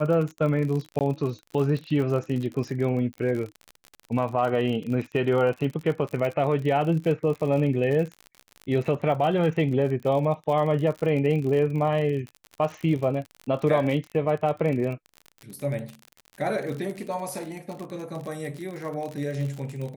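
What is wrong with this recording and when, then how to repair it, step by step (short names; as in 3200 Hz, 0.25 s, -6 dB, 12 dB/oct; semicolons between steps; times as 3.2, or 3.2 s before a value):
crackle 48/s -31 dBFS
0.99–1.01 gap 18 ms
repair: de-click; interpolate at 0.99, 18 ms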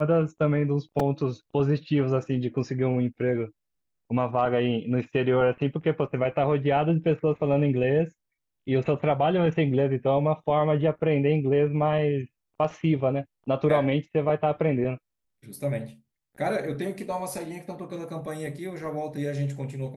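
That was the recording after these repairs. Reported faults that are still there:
none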